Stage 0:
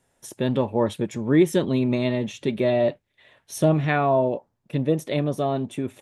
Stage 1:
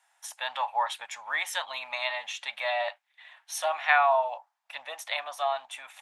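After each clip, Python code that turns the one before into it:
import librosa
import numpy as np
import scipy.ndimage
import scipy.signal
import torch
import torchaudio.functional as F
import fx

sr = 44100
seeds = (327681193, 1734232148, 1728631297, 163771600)

y = scipy.signal.sosfilt(scipy.signal.ellip(4, 1.0, 50, 770.0, 'highpass', fs=sr, output='sos'), x)
y = fx.high_shelf(y, sr, hz=6800.0, db=-7.5)
y = y * librosa.db_to_amplitude(5.0)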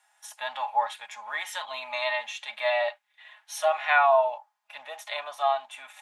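y = x + 0.41 * np.pad(x, (int(4.8 * sr / 1000.0), 0))[:len(x)]
y = fx.hpss(y, sr, part='harmonic', gain_db=9)
y = y * librosa.db_to_amplitude(-5.5)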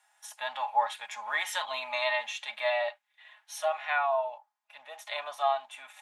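y = fx.rider(x, sr, range_db=5, speed_s=0.5)
y = y * librosa.db_to_amplitude(-3.0)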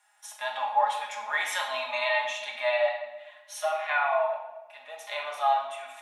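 y = fx.room_shoebox(x, sr, seeds[0], volume_m3=560.0, walls='mixed', distance_m=1.3)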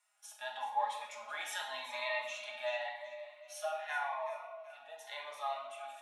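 y = fx.echo_feedback(x, sr, ms=380, feedback_pct=38, wet_db=-14)
y = fx.notch_cascade(y, sr, direction='rising', hz=0.9)
y = y * librosa.db_to_amplitude(-8.0)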